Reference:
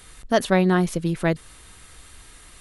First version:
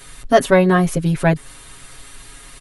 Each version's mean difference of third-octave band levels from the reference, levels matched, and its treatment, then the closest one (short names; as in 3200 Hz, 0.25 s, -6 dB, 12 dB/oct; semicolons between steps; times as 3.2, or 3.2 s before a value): 1.5 dB: dynamic EQ 4300 Hz, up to -6 dB, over -44 dBFS, Q 1.2; comb 7.3 ms, depth 97%; gain +4 dB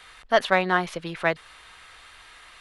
5.5 dB: three-band isolator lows -18 dB, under 600 Hz, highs -18 dB, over 4300 Hz; in parallel at -9.5 dB: one-sided clip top -29 dBFS; on the sum: gain +2.5 dB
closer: first